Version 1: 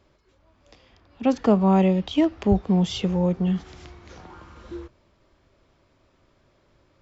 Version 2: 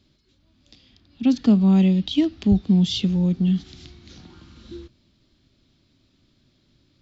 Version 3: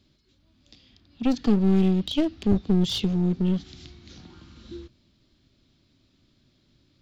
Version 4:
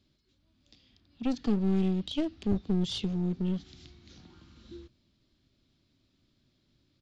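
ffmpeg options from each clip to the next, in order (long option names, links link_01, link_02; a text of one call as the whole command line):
ffmpeg -i in.wav -af "equalizer=frequency=125:width_type=o:width=1:gain=4,equalizer=frequency=250:width_type=o:width=1:gain=9,equalizer=frequency=500:width_type=o:width=1:gain=-9,equalizer=frequency=1000:width_type=o:width=1:gain=-9,equalizer=frequency=2000:width_type=o:width=1:gain=-3,equalizer=frequency=4000:width_type=o:width=1:gain=12,volume=-2.5dB" out.wav
ffmpeg -i in.wav -af "aeval=exprs='clip(val(0),-1,0.0668)':channel_layout=same,volume=-1.5dB" out.wav
ffmpeg -i in.wav -af "aresample=22050,aresample=44100,volume=-7dB" out.wav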